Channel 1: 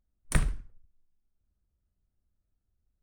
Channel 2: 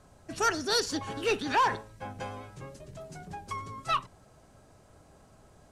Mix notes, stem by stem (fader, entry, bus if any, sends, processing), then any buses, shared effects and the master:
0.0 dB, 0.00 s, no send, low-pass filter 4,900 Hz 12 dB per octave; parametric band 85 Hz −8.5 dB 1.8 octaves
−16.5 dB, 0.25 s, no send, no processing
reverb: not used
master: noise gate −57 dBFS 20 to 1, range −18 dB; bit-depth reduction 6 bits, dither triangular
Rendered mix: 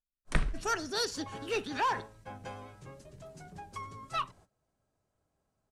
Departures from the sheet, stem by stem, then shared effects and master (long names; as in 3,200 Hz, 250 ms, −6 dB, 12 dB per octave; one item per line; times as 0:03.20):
stem 2 −16.5 dB → −5.0 dB
master: missing bit-depth reduction 6 bits, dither triangular